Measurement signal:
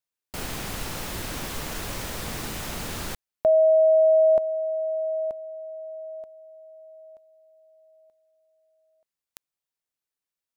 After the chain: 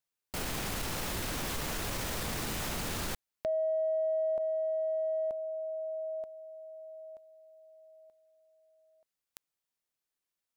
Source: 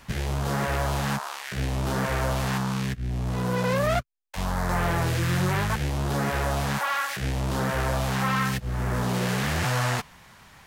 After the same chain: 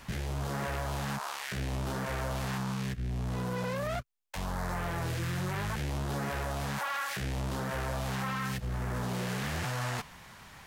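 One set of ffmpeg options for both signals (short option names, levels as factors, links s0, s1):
-af "acompressor=threshold=0.0316:ratio=6:attack=0.97:release=32:knee=1:detection=rms"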